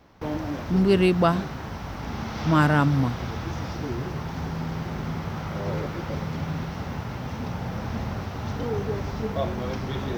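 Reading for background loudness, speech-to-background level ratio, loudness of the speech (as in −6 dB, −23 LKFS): −31.5 LKFS, 9.5 dB, −22.0 LKFS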